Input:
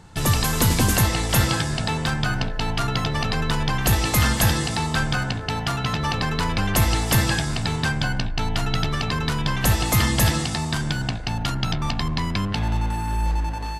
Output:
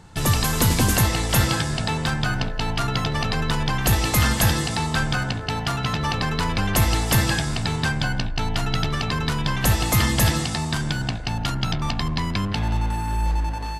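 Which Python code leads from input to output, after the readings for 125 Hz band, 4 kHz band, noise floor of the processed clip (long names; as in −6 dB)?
0.0 dB, 0.0 dB, −28 dBFS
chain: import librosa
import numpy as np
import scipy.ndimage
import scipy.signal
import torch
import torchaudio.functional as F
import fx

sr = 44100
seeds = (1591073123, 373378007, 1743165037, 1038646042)

y = x + 10.0 ** (-23.0 / 20.0) * np.pad(x, (int(165 * sr / 1000.0), 0))[:len(x)]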